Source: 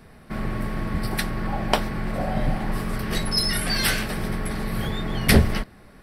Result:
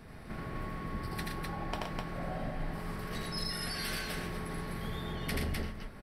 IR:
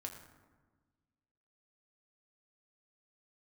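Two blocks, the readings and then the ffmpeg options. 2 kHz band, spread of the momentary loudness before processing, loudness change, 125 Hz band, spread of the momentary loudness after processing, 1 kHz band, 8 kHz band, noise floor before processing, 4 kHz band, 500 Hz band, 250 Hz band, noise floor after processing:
−12.5 dB, 10 LU, −13.0 dB, −13.0 dB, 5 LU, −10.5 dB, −14.5 dB, −49 dBFS, −13.5 dB, −12.0 dB, −13.5 dB, −48 dBFS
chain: -filter_complex "[0:a]acompressor=threshold=-40dB:ratio=2.5,aecho=1:1:81.63|119.5|253.6:0.794|0.501|0.708,asplit=2[link_01][link_02];[1:a]atrim=start_sample=2205,lowpass=7400[link_03];[link_02][link_03]afir=irnorm=-1:irlink=0,volume=-7dB[link_04];[link_01][link_04]amix=inputs=2:normalize=0,volume=-5dB"

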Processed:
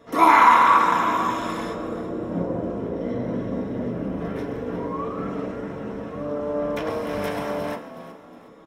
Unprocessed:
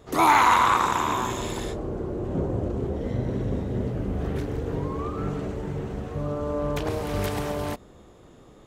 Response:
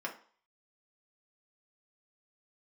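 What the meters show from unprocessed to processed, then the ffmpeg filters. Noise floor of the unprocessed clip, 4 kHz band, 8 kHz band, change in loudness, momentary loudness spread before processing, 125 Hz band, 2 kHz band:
−51 dBFS, −2.0 dB, can't be measured, +3.0 dB, 13 LU, −5.5 dB, +3.0 dB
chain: -filter_complex "[0:a]asplit=5[link_01][link_02][link_03][link_04][link_05];[link_02]adelay=364,afreqshift=74,volume=-14dB[link_06];[link_03]adelay=728,afreqshift=148,volume=-22.6dB[link_07];[link_04]adelay=1092,afreqshift=222,volume=-31.3dB[link_08];[link_05]adelay=1456,afreqshift=296,volume=-39.9dB[link_09];[link_01][link_06][link_07][link_08][link_09]amix=inputs=5:normalize=0[link_10];[1:a]atrim=start_sample=2205[link_11];[link_10][link_11]afir=irnorm=-1:irlink=0"

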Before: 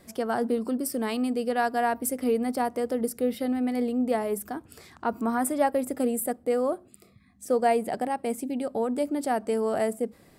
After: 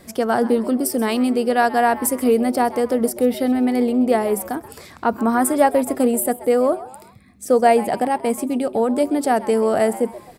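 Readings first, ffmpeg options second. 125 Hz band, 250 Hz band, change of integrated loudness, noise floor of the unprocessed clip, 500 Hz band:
can't be measured, +8.5 dB, +8.5 dB, −58 dBFS, +8.5 dB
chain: -filter_complex "[0:a]asplit=4[link_01][link_02][link_03][link_04];[link_02]adelay=131,afreqshift=130,volume=-17dB[link_05];[link_03]adelay=262,afreqshift=260,volume=-25dB[link_06];[link_04]adelay=393,afreqshift=390,volume=-32.9dB[link_07];[link_01][link_05][link_06][link_07]amix=inputs=4:normalize=0,volume=8.5dB"

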